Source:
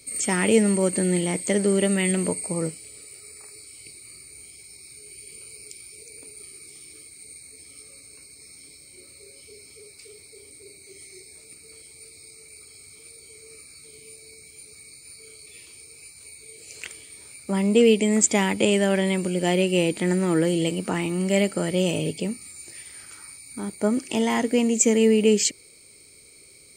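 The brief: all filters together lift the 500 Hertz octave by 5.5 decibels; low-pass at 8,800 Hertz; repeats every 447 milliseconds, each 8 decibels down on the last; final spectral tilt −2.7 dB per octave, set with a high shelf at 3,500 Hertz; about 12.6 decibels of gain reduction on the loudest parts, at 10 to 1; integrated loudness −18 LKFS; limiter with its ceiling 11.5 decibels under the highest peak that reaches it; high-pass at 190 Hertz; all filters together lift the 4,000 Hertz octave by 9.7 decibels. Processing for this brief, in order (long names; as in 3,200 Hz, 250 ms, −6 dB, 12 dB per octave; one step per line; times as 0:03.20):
high-pass filter 190 Hz
low-pass filter 8,800 Hz
parametric band 500 Hz +6.5 dB
high-shelf EQ 3,500 Hz +8.5 dB
parametric band 4,000 Hz +8 dB
downward compressor 10 to 1, threshold −21 dBFS
brickwall limiter −18 dBFS
repeating echo 447 ms, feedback 40%, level −8 dB
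level +12 dB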